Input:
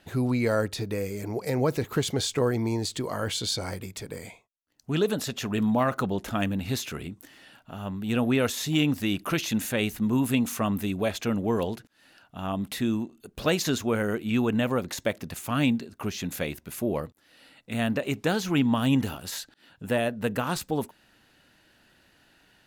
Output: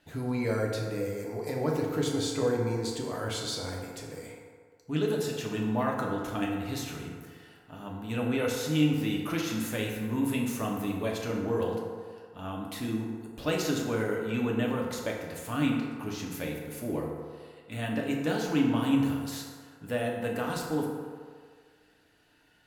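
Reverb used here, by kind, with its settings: FDN reverb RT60 1.9 s, low-frequency decay 0.7×, high-frequency decay 0.45×, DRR -2 dB; trim -8 dB

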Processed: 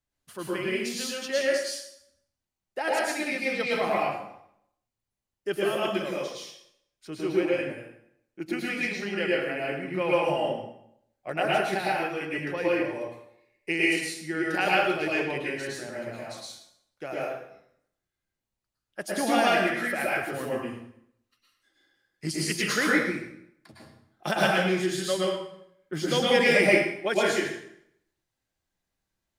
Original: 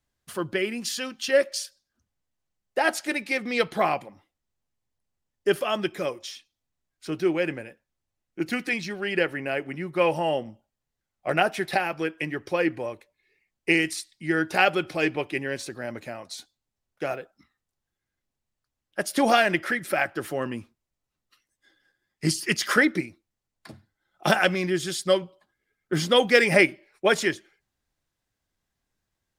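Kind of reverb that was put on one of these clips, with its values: plate-style reverb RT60 0.72 s, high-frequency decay 0.85×, pre-delay 95 ms, DRR -5.5 dB; trim -8 dB

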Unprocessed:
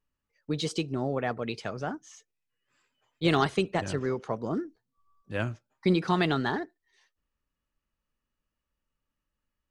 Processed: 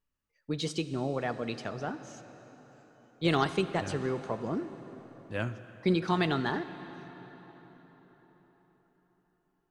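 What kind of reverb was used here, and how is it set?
plate-style reverb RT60 4.8 s, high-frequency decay 0.7×, DRR 11 dB; trim -2.5 dB

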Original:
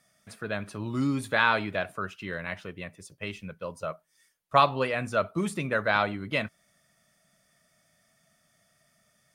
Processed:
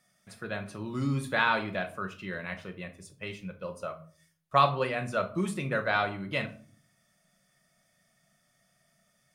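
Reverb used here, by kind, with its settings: simulated room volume 370 m³, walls furnished, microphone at 0.97 m; trim -3.5 dB

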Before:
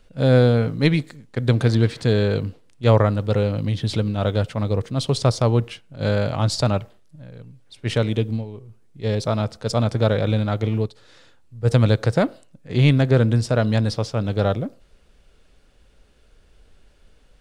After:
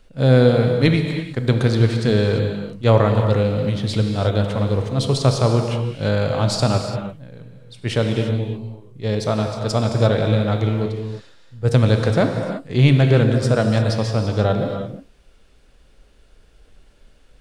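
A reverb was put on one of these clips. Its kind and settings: gated-style reverb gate 370 ms flat, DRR 4 dB; trim +1 dB

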